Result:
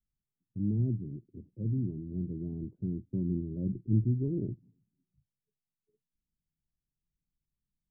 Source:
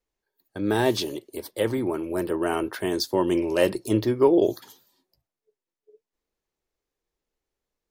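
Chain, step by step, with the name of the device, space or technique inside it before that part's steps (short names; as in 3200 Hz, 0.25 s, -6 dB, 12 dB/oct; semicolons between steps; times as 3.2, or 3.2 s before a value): the neighbour's flat through the wall (LPF 210 Hz 24 dB/oct; bell 150 Hz +7.5 dB 0.79 oct)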